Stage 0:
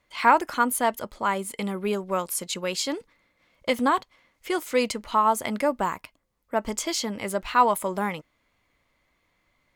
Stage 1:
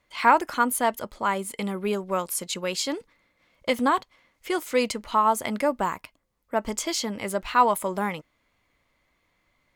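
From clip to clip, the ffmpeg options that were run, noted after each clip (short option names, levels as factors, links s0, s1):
-af anull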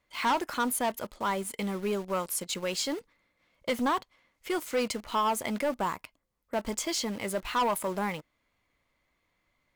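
-filter_complex "[0:a]asplit=2[s0][s1];[s1]acrusher=bits=5:mix=0:aa=0.000001,volume=0.501[s2];[s0][s2]amix=inputs=2:normalize=0,asoftclip=type=tanh:threshold=0.15,volume=0.531"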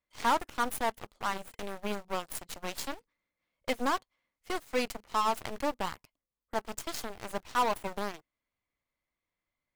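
-af "aeval=exprs='0.0841*(cos(1*acos(clip(val(0)/0.0841,-1,1)))-cos(1*PI/2))+0.0335*(cos(3*acos(clip(val(0)/0.0841,-1,1)))-cos(3*PI/2))+0.00944*(cos(4*acos(clip(val(0)/0.0841,-1,1)))-cos(4*PI/2))':c=same"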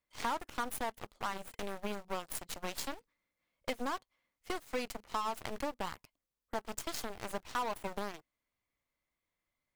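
-af "acompressor=threshold=0.0251:ratio=6"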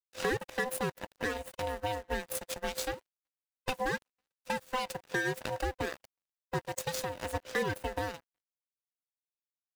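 -filter_complex "[0:a]afftfilt=real='real(if(lt(b,1008),b+24*(1-2*mod(floor(b/24),2)),b),0)':imag='imag(if(lt(b,1008),b+24*(1-2*mod(floor(b/24),2)),b),0)':win_size=2048:overlap=0.75,asplit=2[s0][s1];[s1]adelay=370,highpass=300,lowpass=3400,asoftclip=type=hard:threshold=0.0335,volume=0.0398[s2];[s0][s2]amix=inputs=2:normalize=0,aeval=exprs='sgn(val(0))*max(abs(val(0))-0.00126,0)':c=same,volume=1.58"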